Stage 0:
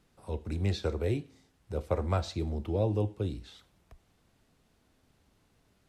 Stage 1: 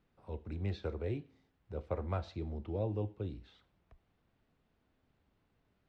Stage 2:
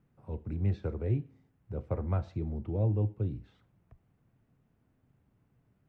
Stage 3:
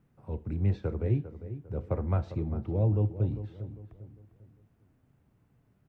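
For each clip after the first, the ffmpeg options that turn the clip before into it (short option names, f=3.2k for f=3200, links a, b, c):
-af "lowpass=3.1k,volume=-7dB"
-af "equalizer=f=125:t=o:w=1:g=12,equalizer=f=250:t=o:w=1:g=3,equalizer=f=4k:t=o:w=1:g=-9"
-filter_complex "[0:a]asplit=2[a][b];[b]adelay=400,lowpass=f=1.6k:p=1,volume=-12dB,asplit=2[c][d];[d]adelay=400,lowpass=f=1.6k:p=1,volume=0.38,asplit=2[e][f];[f]adelay=400,lowpass=f=1.6k:p=1,volume=0.38,asplit=2[g][h];[h]adelay=400,lowpass=f=1.6k:p=1,volume=0.38[i];[a][c][e][g][i]amix=inputs=5:normalize=0,volume=2.5dB"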